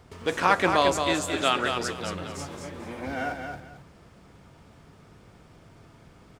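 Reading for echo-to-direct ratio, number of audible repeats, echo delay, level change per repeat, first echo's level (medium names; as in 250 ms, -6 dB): -6.0 dB, 2, 222 ms, -13.0 dB, -6.0 dB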